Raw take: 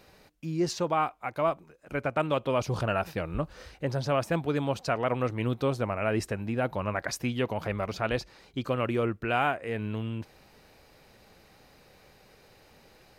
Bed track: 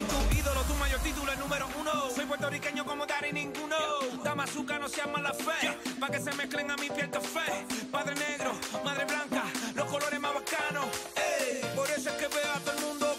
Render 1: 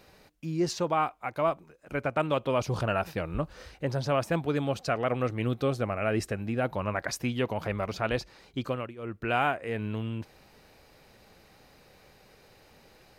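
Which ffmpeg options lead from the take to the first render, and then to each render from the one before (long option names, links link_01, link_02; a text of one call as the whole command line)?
ffmpeg -i in.wav -filter_complex "[0:a]asettb=1/sr,asplit=3[link_01][link_02][link_03];[link_01]atrim=end=4.564[link_04];[link_02]atrim=start=4.56:end=6.64,asetpts=PTS-STARTPTS,afade=type=in:duration=0.004:curve=qsin,afade=type=out:start_time=2.076:duration=0.004:curve=qsin,bandreject=frequency=950:width=6.9[link_05];[link_03]atrim=start=6.636[link_06];[link_04][link_05]acrossfade=duration=0.004:curve1=hsin:curve2=qsin[link_07];[link_07][link_06]acrossfade=duration=0.004:curve1=qsin:curve2=hsin,asplit=3[link_08][link_09][link_10];[link_08]atrim=end=8.95,asetpts=PTS-STARTPTS,afade=type=out:start_time=8.64:duration=0.31:silence=0.0891251[link_11];[link_09]atrim=start=8.95:end=8.96,asetpts=PTS-STARTPTS,volume=-21dB[link_12];[link_10]atrim=start=8.96,asetpts=PTS-STARTPTS,afade=type=in:duration=0.31:silence=0.0891251[link_13];[link_11][link_12][link_13]concat=n=3:v=0:a=1" out.wav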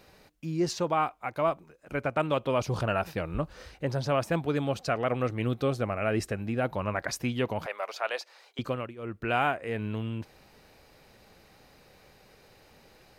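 ffmpeg -i in.wav -filter_complex "[0:a]asettb=1/sr,asplit=3[link_01][link_02][link_03];[link_01]atrim=end=7.664[link_04];[link_02]atrim=start=7.66:end=8.59,asetpts=PTS-STARTPTS,afade=type=in:duration=0.004:curve=qsin,afade=type=out:start_time=0.926:duration=0.004:curve=qsin,highpass=frequency=540:width=0.5412,highpass=frequency=540:width=1.3066[link_05];[link_03]atrim=start=8.586[link_06];[link_04][link_05]acrossfade=duration=0.004:curve1=hsin:curve2=qsin[link_07];[link_07][link_06]acrossfade=duration=0.004:curve1=qsin:curve2=hsin" out.wav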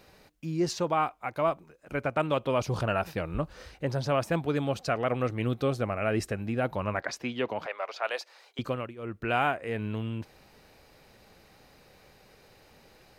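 ffmpeg -i in.wav -filter_complex "[0:a]asettb=1/sr,asplit=3[link_01][link_02][link_03];[link_01]atrim=end=7.004[link_04];[link_02]atrim=start=7:end=8.03,asetpts=PTS-STARTPTS,afade=type=in:duration=0.004:curve=qsin,afade=type=out:start_time=1.026:duration=0.004:curve=qsin,acrossover=split=230 6000:gain=0.251 1 0.178[link_05][link_06][link_07];[link_05][link_06][link_07]amix=inputs=3:normalize=0[link_08];[link_03]atrim=start=8.026[link_09];[link_04][link_08]acrossfade=duration=0.004:curve1=hsin:curve2=qsin[link_10];[link_10][link_09]acrossfade=duration=0.004:curve1=qsin:curve2=hsin" out.wav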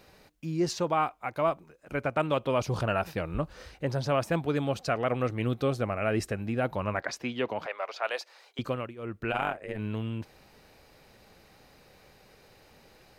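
ffmpeg -i in.wav -filter_complex "[0:a]asplit=3[link_01][link_02][link_03];[link_01]afade=type=out:start_time=9.3:duration=0.02[link_04];[link_02]tremolo=f=100:d=0.947,afade=type=in:start_time=9.3:duration=0.02,afade=type=out:start_time=9.77:duration=0.02[link_05];[link_03]afade=type=in:start_time=9.77:duration=0.02[link_06];[link_04][link_05][link_06]amix=inputs=3:normalize=0" out.wav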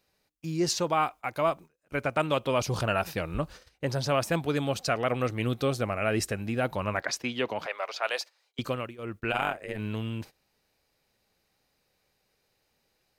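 ffmpeg -i in.wav -af "agate=range=-19dB:threshold=-43dB:ratio=16:detection=peak,highshelf=frequency=3000:gain=9" out.wav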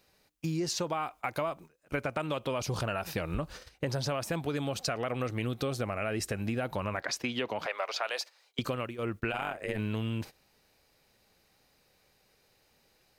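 ffmpeg -i in.wav -filter_complex "[0:a]asplit=2[link_01][link_02];[link_02]alimiter=limit=-21.5dB:level=0:latency=1:release=29,volume=-0.5dB[link_03];[link_01][link_03]amix=inputs=2:normalize=0,acompressor=threshold=-29dB:ratio=10" out.wav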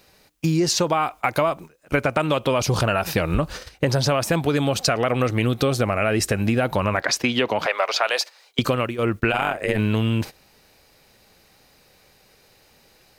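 ffmpeg -i in.wav -af "volume=12dB" out.wav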